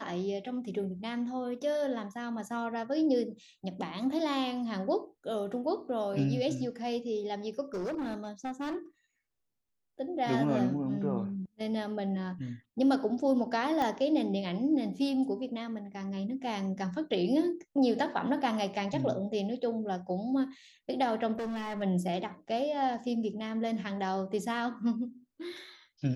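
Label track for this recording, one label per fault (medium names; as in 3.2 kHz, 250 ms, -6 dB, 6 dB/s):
7.740000	8.760000	clipped -31.5 dBFS
13.820000	13.820000	pop -19 dBFS
21.380000	21.830000	clipped -32.5 dBFS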